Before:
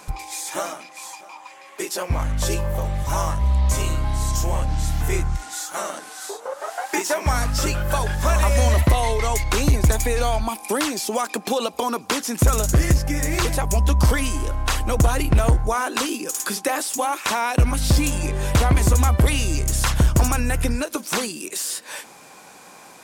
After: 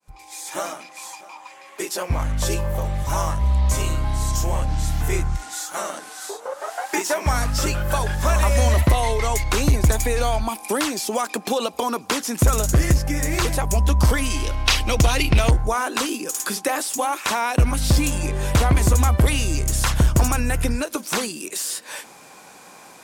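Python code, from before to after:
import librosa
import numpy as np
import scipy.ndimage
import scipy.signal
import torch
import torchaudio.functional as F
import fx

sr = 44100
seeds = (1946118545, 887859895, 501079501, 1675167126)

y = fx.fade_in_head(x, sr, length_s=0.66)
y = fx.band_shelf(y, sr, hz=3500.0, db=9.5, octaves=1.7, at=(14.3, 15.51))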